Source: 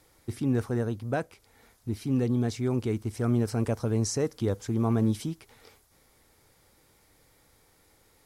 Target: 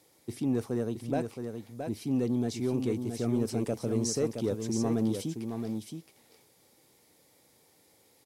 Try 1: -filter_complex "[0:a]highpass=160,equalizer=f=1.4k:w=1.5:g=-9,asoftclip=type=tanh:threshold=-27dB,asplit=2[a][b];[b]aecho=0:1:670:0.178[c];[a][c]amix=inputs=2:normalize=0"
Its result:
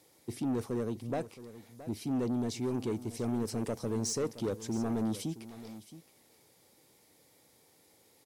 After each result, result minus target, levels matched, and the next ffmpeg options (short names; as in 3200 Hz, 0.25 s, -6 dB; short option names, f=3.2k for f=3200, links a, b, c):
soft clip: distortion +12 dB; echo-to-direct -8.5 dB
-filter_complex "[0:a]highpass=160,equalizer=f=1.4k:w=1.5:g=-9,asoftclip=type=tanh:threshold=-18dB,asplit=2[a][b];[b]aecho=0:1:670:0.178[c];[a][c]amix=inputs=2:normalize=0"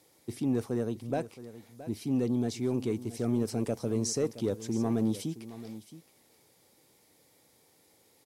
echo-to-direct -8.5 dB
-filter_complex "[0:a]highpass=160,equalizer=f=1.4k:w=1.5:g=-9,asoftclip=type=tanh:threshold=-18dB,asplit=2[a][b];[b]aecho=0:1:670:0.473[c];[a][c]amix=inputs=2:normalize=0"